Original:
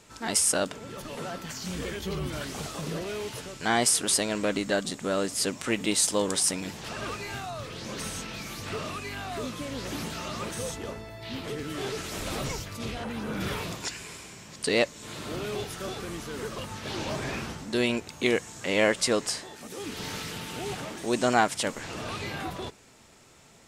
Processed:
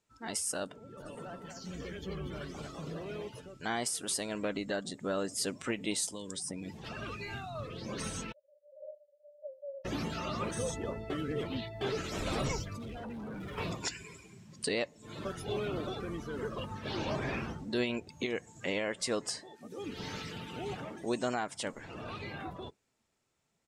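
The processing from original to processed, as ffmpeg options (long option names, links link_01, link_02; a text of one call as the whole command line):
ffmpeg -i in.wav -filter_complex "[0:a]asplit=3[link_01][link_02][link_03];[link_01]afade=type=out:start_time=0.97:duration=0.02[link_04];[link_02]aecho=1:1:234|468|702|936:0.473|0.175|0.0648|0.024,afade=type=in:start_time=0.97:duration=0.02,afade=type=out:start_time=3.27:duration=0.02[link_05];[link_03]afade=type=in:start_time=3.27:duration=0.02[link_06];[link_04][link_05][link_06]amix=inputs=3:normalize=0,asettb=1/sr,asplit=3[link_07][link_08][link_09];[link_07]atrim=end=6.084[link_10];[link_08]atrim=start=6.08:end=7.55,asetpts=PTS-STARTPTS,afade=type=in:duration=0.004:curve=qsin,afade=type=out:start_time=1.466:duration=0.004:curve=qsin,acrossover=split=280|1800[link_11][link_12][link_13];[link_11]acompressor=threshold=-38dB:ratio=4[link_14];[link_12]acompressor=threshold=-41dB:ratio=4[link_15];[link_13]acompressor=threshold=-35dB:ratio=4[link_16];[link_14][link_15][link_16]amix=inputs=3:normalize=0[link_17];[link_09]atrim=start=7.546[link_18];[link_10][link_17]acrossfade=duration=0.004:curve1=hsin:curve2=qsin[link_19];[link_19][link_18]acrossfade=duration=0.004:curve1=qsin:curve2=hsin,asettb=1/sr,asplit=3[link_20][link_21][link_22];[link_20]atrim=end=8.324[link_23];[link_21]atrim=start=8.32:end=9.85,asetpts=PTS-STARTPTS,afade=type=in:duration=0.004:curve=qsin,afade=type=out:start_time=1.526:duration=0.004:curve=qsin,asuperpass=centerf=570:order=20:qfactor=6.1[link_24];[link_22]atrim=start=9.846[link_25];[link_23][link_24]acrossfade=duration=0.004:curve1=hsin:curve2=qsin[link_26];[link_26][link_25]acrossfade=duration=0.004:curve1=qsin:curve2=hsin,asettb=1/sr,asplit=3[link_27][link_28][link_29];[link_27]atrim=end=12.784[link_30];[link_28]atrim=start=12.78:end=13.58,asetpts=PTS-STARTPTS,afade=type=in:duration=0.004:curve=qsin,afade=type=out:start_time=0.796:duration=0.004:curve=qsin,asoftclip=type=hard:threshold=-38.5dB[link_31];[link_29]atrim=start=13.576[link_32];[link_30][link_31]acrossfade=duration=0.004:curve1=hsin:curve2=qsin[link_33];[link_33][link_32]acrossfade=duration=0.004:curve1=qsin:curve2=hsin,asplit=5[link_34][link_35][link_36][link_37][link_38];[link_34]atrim=end=11.102[link_39];[link_35]atrim=start=11.098:end=11.812,asetpts=PTS-STARTPTS,areverse[link_40];[link_36]atrim=start=11.808:end=15.252[link_41];[link_37]atrim=start=15.248:end=15.872,asetpts=PTS-STARTPTS,areverse[link_42];[link_38]atrim=start=15.868[link_43];[link_39][link_40]acrossfade=duration=0.004:curve1=hsin:curve2=hsin[link_44];[link_44][link_41]acrossfade=duration=0.004:curve1=hsin:curve2=hsin[link_45];[link_45][link_42]acrossfade=duration=0.004:curve1=hsin:curve2=hsin[link_46];[link_46][link_43]acrossfade=duration=0.004:curve1=hsin:curve2=hsin,afftdn=noise_reduction=17:noise_floor=-40,dynaudnorm=framelen=940:gausssize=11:maxgain=11.5dB,alimiter=limit=-13.5dB:level=0:latency=1:release=404,volume=-8.5dB" out.wav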